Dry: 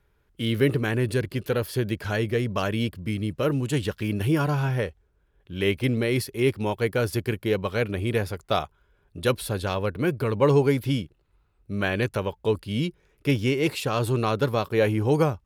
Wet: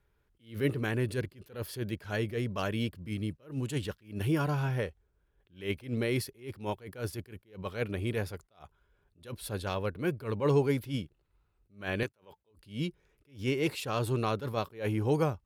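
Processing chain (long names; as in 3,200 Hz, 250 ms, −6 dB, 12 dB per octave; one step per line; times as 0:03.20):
0:12.03–0:12.51: high-pass filter 300 Hz 6 dB per octave
level that may rise only so fast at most 180 dB per second
level −6 dB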